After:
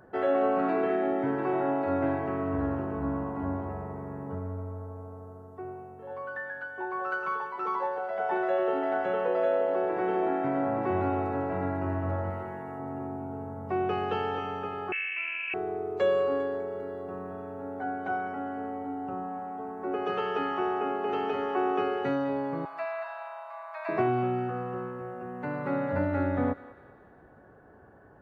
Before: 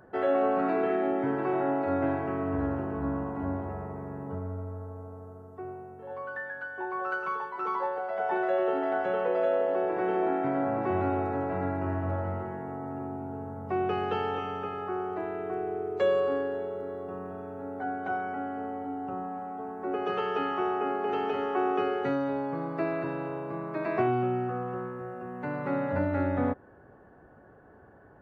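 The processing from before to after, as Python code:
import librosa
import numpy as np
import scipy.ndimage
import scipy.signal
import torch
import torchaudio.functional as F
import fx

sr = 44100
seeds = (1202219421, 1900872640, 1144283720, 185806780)

p1 = fx.tilt_shelf(x, sr, db=-3.5, hz=970.0, at=(12.3, 12.79))
p2 = fx.cheby1_highpass(p1, sr, hz=660.0, order=6, at=(22.65, 23.89))
p3 = p2 + fx.echo_thinned(p2, sr, ms=199, feedback_pct=59, hz=1000.0, wet_db=-13.5, dry=0)
y = fx.freq_invert(p3, sr, carrier_hz=3000, at=(14.92, 15.54))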